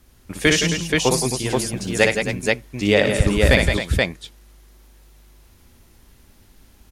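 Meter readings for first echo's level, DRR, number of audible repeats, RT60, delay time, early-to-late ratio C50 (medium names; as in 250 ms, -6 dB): -4.5 dB, no reverb, 5, no reverb, 59 ms, no reverb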